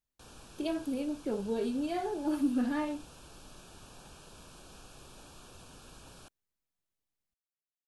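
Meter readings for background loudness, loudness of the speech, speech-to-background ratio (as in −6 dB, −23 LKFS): −53.0 LKFS, −33.5 LKFS, 19.5 dB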